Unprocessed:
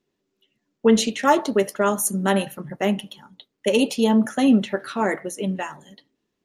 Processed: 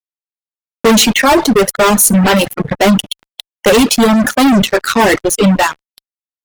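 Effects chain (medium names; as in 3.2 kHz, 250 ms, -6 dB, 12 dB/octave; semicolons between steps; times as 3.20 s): fuzz box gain 32 dB, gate -36 dBFS; reverb removal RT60 1.3 s; trim +7.5 dB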